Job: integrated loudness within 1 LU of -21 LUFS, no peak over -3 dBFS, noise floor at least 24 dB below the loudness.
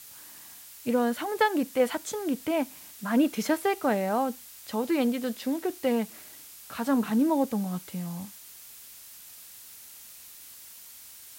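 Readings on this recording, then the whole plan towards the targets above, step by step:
noise floor -48 dBFS; noise floor target -52 dBFS; loudness -28.0 LUFS; peak -11.5 dBFS; loudness target -21.0 LUFS
-> noise print and reduce 6 dB; gain +7 dB

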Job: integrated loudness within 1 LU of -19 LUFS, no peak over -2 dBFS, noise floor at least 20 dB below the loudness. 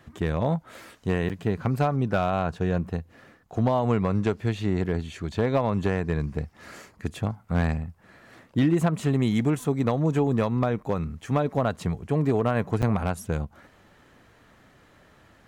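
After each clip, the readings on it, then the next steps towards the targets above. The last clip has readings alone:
clipped 0.3%; flat tops at -14.5 dBFS; dropouts 2; longest dropout 7.9 ms; loudness -26.5 LUFS; peak -14.5 dBFS; loudness target -19.0 LUFS
-> clip repair -14.5 dBFS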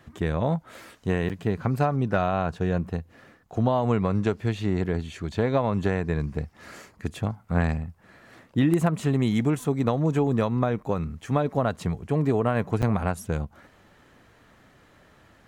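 clipped 0.0%; dropouts 2; longest dropout 7.9 ms
-> interpolate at 1.29/12.82, 7.9 ms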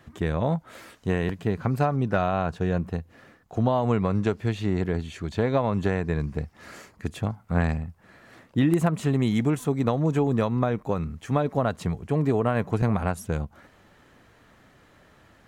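dropouts 0; loudness -26.0 LUFS; peak -7.5 dBFS; loudness target -19.0 LUFS
-> gain +7 dB; limiter -2 dBFS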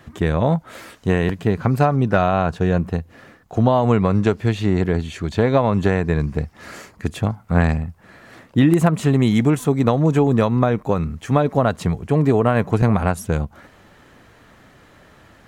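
loudness -19.0 LUFS; peak -2.0 dBFS; noise floor -50 dBFS

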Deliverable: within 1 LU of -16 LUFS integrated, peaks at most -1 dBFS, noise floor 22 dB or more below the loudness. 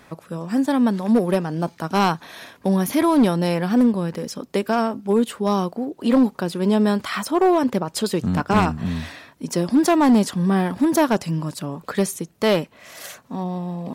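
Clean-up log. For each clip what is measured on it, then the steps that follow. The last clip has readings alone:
clipped 0.9%; flat tops at -10.5 dBFS; loudness -21.0 LUFS; peak -10.5 dBFS; loudness target -16.0 LUFS
-> clip repair -10.5 dBFS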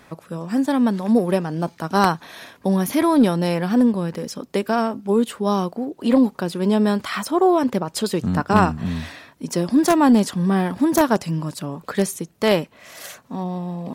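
clipped 0.0%; loudness -20.5 LUFS; peak -1.5 dBFS; loudness target -16.0 LUFS
-> gain +4.5 dB; limiter -1 dBFS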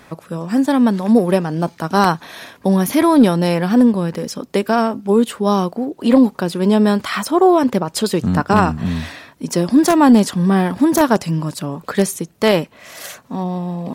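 loudness -16.0 LUFS; peak -1.0 dBFS; noise floor -48 dBFS

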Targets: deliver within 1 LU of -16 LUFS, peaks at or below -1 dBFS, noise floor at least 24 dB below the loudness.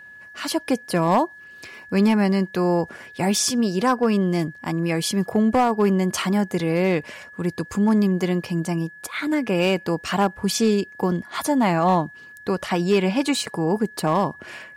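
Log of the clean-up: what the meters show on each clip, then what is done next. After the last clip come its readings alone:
clipped 0.4%; flat tops at -11.5 dBFS; steady tone 1700 Hz; tone level -41 dBFS; loudness -22.0 LUFS; peak -11.5 dBFS; loudness target -16.0 LUFS
-> clip repair -11.5 dBFS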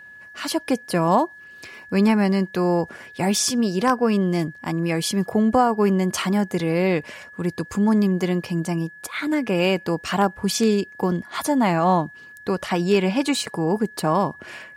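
clipped 0.0%; steady tone 1700 Hz; tone level -41 dBFS
-> notch 1700 Hz, Q 30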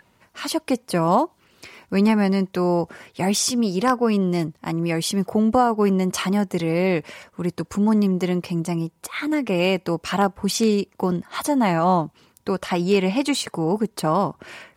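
steady tone none; loudness -22.0 LUFS; peak -5.0 dBFS; loudness target -16.0 LUFS
-> gain +6 dB; limiter -1 dBFS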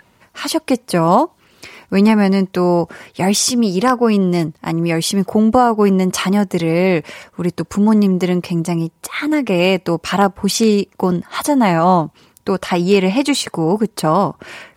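loudness -16.0 LUFS; peak -1.0 dBFS; noise floor -56 dBFS

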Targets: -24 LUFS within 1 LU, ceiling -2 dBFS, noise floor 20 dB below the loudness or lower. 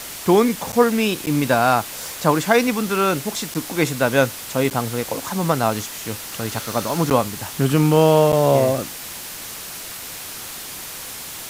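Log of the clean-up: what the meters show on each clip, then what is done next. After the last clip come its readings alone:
dropouts 6; longest dropout 8.8 ms; noise floor -34 dBFS; noise floor target -40 dBFS; loudness -19.5 LUFS; peak -2.0 dBFS; loudness target -24.0 LUFS
-> interpolate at 0.72/1.26/3.54/4.7/7.1/8.32, 8.8 ms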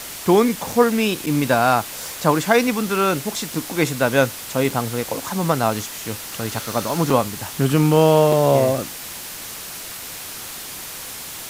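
dropouts 0; noise floor -34 dBFS; noise floor target -40 dBFS
-> denoiser 6 dB, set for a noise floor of -34 dBFS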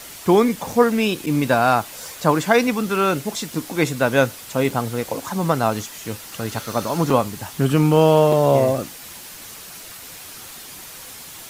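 noise floor -38 dBFS; noise floor target -40 dBFS
-> denoiser 6 dB, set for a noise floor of -38 dBFS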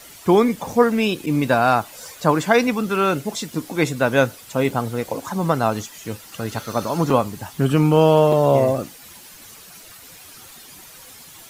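noise floor -43 dBFS; loudness -19.5 LUFS; peak -2.0 dBFS; loudness target -24.0 LUFS
-> gain -4.5 dB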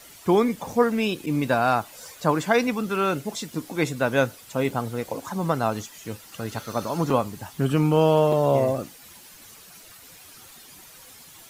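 loudness -24.0 LUFS; peak -6.5 dBFS; noise floor -48 dBFS

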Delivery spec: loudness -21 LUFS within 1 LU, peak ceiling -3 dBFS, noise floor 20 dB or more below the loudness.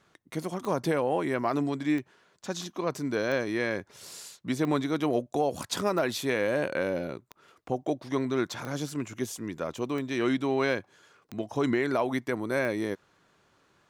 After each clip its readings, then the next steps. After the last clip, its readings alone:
clicks 10; loudness -30.0 LUFS; peak -15.0 dBFS; loudness target -21.0 LUFS
-> de-click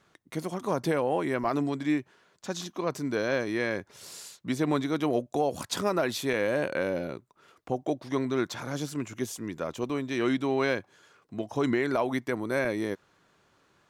clicks 0; loudness -30.0 LUFS; peak -15.0 dBFS; loudness target -21.0 LUFS
-> gain +9 dB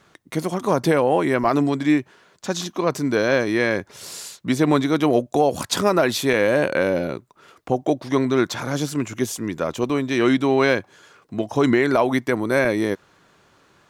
loudness -21.0 LUFS; peak -6.0 dBFS; noise floor -58 dBFS

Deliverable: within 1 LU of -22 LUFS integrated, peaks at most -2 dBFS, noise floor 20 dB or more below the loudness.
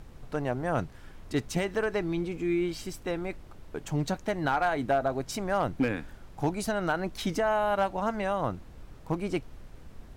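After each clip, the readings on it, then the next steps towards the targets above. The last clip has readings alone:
clipped 0.2%; flat tops at -18.5 dBFS; noise floor -49 dBFS; noise floor target -51 dBFS; loudness -30.5 LUFS; peak -18.5 dBFS; loudness target -22.0 LUFS
-> clip repair -18.5 dBFS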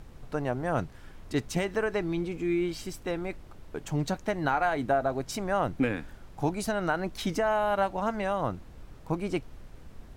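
clipped 0.0%; noise floor -49 dBFS; noise floor target -51 dBFS
-> noise print and reduce 6 dB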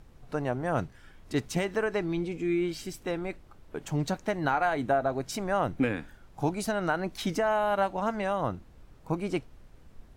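noise floor -54 dBFS; loudness -30.5 LUFS; peak -14.5 dBFS; loudness target -22.0 LUFS
-> gain +8.5 dB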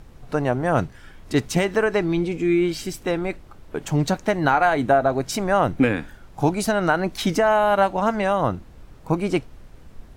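loudness -22.0 LUFS; peak -6.0 dBFS; noise floor -46 dBFS

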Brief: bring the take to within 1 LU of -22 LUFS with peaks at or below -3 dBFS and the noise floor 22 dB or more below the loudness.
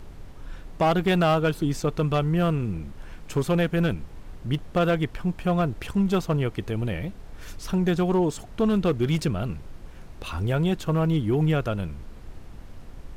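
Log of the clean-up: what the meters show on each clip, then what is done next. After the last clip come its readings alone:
clipped 1.1%; flat tops at -15.5 dBFS; noise floor -43 dBFS; noise floor target -47 dBFS; loudness -25.0 LUFS; peak -15.5 dBFS; loudness target -22.0 LUFS
-> clip repair -15.5 dBFS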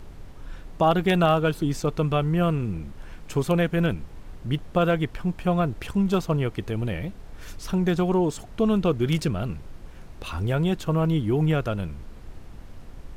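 clipped 0.0%; noise floor -43 dBFS; noise floor target -47 dBFS
-> noise print and reduce 6 dB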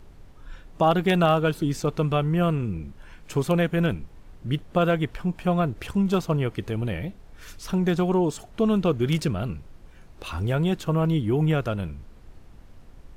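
noise floor -49 dBFS; loudness -24.5 LUFS; peak -8.5 dBFS; loudness target -22.0 LUFS
-> gain +2.5 dB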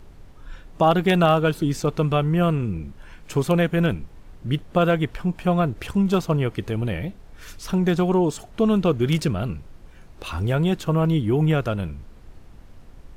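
loudness -22.0 LUFS; peak -6.0 dBFS; noise floor -46 dBFS

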